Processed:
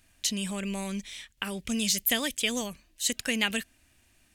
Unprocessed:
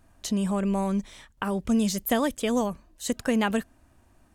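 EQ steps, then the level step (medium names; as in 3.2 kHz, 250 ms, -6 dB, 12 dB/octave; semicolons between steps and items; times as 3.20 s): resonant high shelf 1.6 kHz +13 dB, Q 1.5; -7.5 dB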